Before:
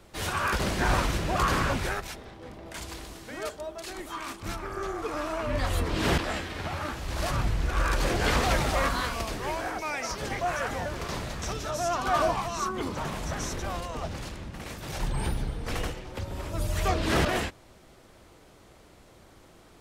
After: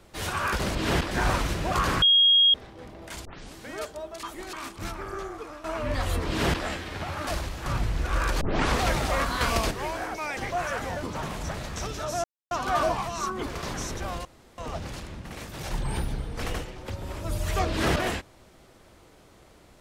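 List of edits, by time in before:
1.66–2.18 bleep 3270 Hz -15 dBFS
2.89 tape start 0.30 s
3.87–4.17 reverse
4.71–5.28 fade out, to -14.5 dB
5.92–6.28 copy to 0.75
6.91–7.3 reverse
8.05 tape start 0.33 s
9.05–9.35 gain +7 dB
10.01–10.26 cut
10.92–11.2 swap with 12.85–13.36
11.9 insert silence 0.27 s
13.87 insert room tone 0.33 s

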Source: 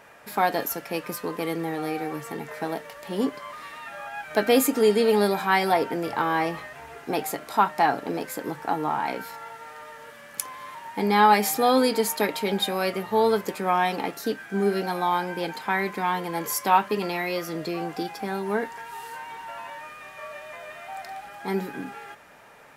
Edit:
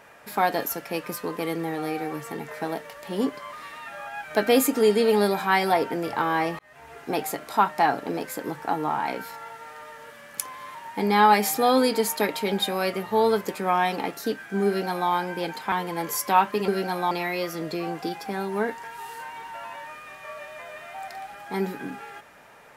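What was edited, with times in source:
6.59–7.17 fade in equal-power
14.67–15.1 copy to 17.05
15.72–16.09 cut

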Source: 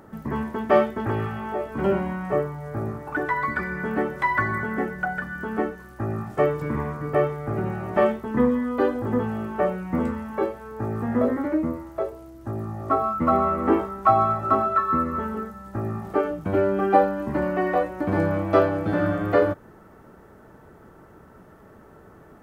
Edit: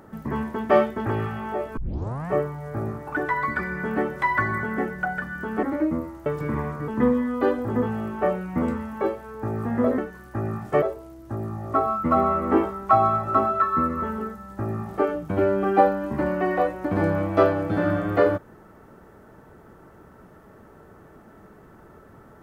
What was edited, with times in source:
1.77 tape start 0.53 s
5.63–6.47 swap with 11.35–11.98
7.09–8.25 cut

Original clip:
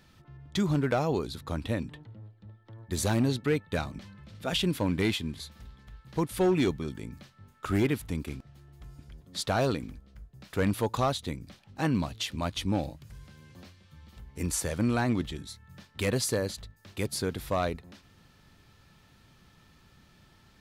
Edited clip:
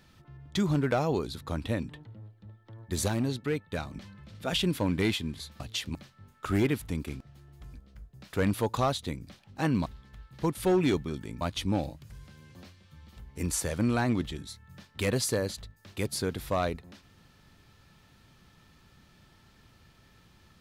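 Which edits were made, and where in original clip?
3.08–3.91 gain -3.5 dB
5.6–7.15 swap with 12.06–12.41
8.93–9.93 cut

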